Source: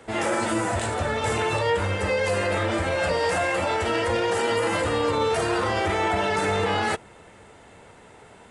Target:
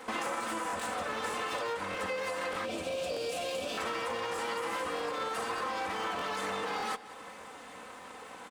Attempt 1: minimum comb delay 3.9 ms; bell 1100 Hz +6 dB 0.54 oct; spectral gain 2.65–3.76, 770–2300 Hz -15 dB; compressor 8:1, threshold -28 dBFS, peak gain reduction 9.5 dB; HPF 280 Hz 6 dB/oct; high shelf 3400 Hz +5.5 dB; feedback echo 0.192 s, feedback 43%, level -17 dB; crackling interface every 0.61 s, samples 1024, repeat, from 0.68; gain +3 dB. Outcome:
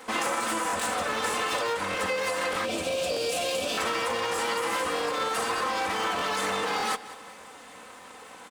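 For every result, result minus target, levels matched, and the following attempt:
compressor: peak gain reduction -5.5 dB; 8000 Hz band +3.5 dB
minimum comb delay 3.9 ms; bell 1100 Hz +6 dB 0.54 oct; spectral gain 2.65–3.76, 770–2300 Hz -15 dB; compressor 8:1, threshold -34.5 dBFS, peak gain reduction 15 dB; HPF 280 Hz 6 dB/oct; high shelf 3400 Hz +5.5 dB; feedback echo 0.192 s, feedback 43%, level -17 dB; crackling interface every 0.61 s, samples 1024, repeat, from 0.68; gain +3 dB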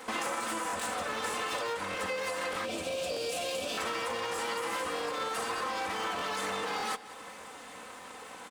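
8000 Hz band +3.5 dB
minimum comb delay 3.9 ms; bell 1100 Hz +6 dB 0.54 oct; spectral gain 2.65–3.76, 770–2300 Hz -15 dB; compressor 8:1, threshold -34.5 dBFS, peak gain reduction 15 dB; HPF 280 Hz 6 dB/oct; feedback echo 0.192 s, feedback 43%, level -17 dB; crackling interface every 0.61 s, samples 1024, repeat, from 0.68; gain +3 dB

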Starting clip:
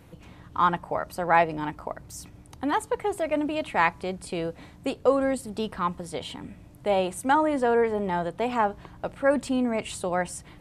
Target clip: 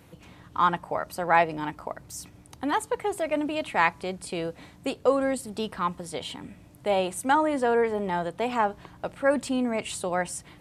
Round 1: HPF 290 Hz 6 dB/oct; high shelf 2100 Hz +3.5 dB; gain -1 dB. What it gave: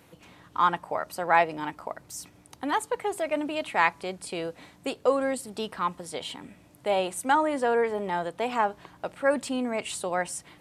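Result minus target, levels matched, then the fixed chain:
125 Hz band -4.5 dB
HPF 81 Hz 6 dB/oct; high shelf 2100 Hz +3.5 dB; gain -1 dB

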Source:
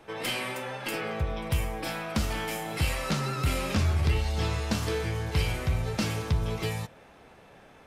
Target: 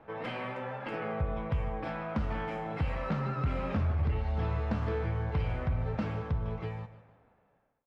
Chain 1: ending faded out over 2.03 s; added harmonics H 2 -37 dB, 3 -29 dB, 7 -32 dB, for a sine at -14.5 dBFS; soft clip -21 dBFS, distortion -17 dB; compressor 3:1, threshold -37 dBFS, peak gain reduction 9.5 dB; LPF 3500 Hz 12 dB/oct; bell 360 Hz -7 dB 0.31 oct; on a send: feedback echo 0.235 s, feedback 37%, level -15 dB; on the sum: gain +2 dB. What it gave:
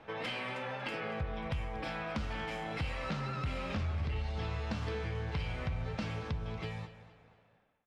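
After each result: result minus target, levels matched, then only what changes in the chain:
echo 83 ms late; 4000 Hz band +11.0 dB; compressor: peak gain reduction +5.5 dB
change: feedback echo 0.152 s, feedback 37%, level -15 dB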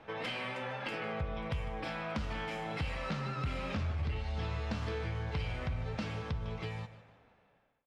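4000 Hz band +10.5 dB; compressor: peak gain reduction +5.5 dB
change: LPF 1500 Hz 12 dB/oct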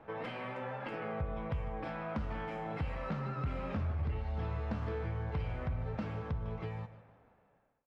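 compressor: peak gain reduction +5.5 dB
change: compressor 3:1, threshold -28.5 dBFS, peak gain reduction 4 dB

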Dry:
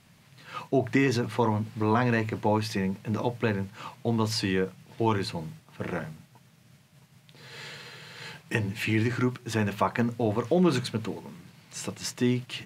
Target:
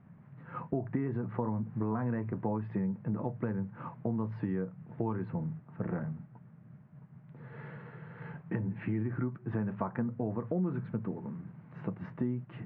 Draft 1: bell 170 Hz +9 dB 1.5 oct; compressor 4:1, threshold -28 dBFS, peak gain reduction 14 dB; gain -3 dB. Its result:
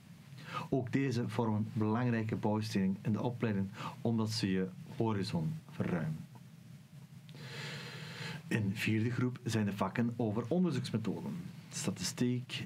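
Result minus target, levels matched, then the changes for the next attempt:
2000 Hz band +6.0 dB
add after compressor: LPF 1600 Hz 24 dB/oct

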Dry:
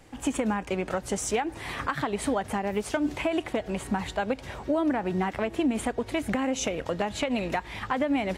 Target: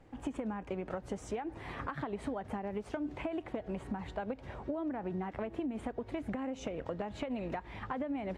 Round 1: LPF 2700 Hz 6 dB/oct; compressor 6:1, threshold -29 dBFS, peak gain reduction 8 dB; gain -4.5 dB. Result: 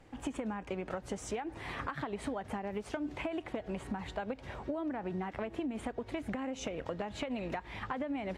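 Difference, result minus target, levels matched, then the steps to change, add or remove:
2000 Hz band +3.0 dB
change: LPF 1100 Hz 6 dB/oct

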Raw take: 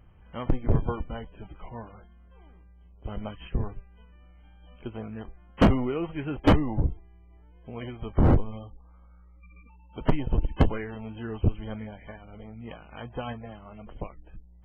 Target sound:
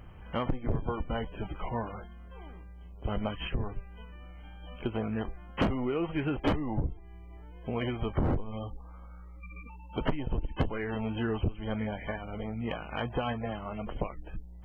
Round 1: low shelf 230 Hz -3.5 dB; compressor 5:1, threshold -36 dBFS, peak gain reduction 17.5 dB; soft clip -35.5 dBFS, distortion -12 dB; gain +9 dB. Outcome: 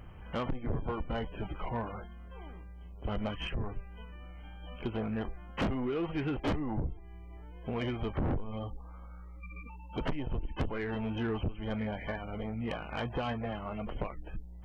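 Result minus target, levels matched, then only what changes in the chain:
soft clip: distortion +15 dB
change: soft clip -24 dBFS, distortion -27 dB

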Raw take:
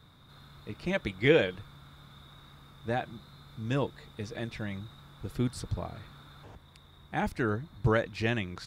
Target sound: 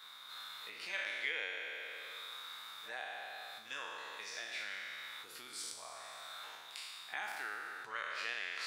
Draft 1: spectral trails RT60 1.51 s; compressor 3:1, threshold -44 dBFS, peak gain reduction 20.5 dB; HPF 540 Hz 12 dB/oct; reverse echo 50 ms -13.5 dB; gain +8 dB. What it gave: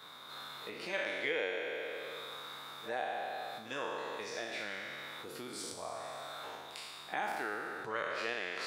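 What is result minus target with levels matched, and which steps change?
500 Hz band +10.5 dB
change: HPF 1400 Hz 12 dB/oct

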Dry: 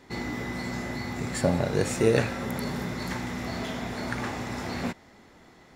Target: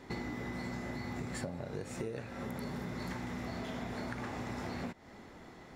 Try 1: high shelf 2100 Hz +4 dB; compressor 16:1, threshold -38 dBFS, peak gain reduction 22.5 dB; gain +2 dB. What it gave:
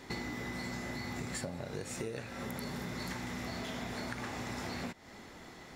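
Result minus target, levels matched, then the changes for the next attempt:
4000 Hz band +5.0 dB
change: high shelf 2100 Hz -5 dB

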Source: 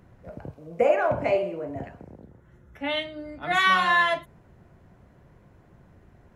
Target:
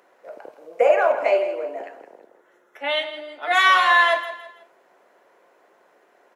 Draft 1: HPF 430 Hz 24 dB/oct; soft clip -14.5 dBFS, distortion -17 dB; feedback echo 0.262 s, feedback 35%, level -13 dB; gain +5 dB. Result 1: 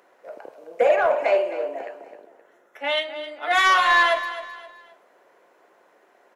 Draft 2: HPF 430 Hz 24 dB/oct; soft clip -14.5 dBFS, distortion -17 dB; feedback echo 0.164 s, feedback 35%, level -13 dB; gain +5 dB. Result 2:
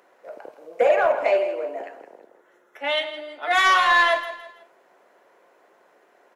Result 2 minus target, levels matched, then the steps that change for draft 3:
soft clip: distortion +15 dB
change: soft clip -5 dBFS, distortion -32 dB

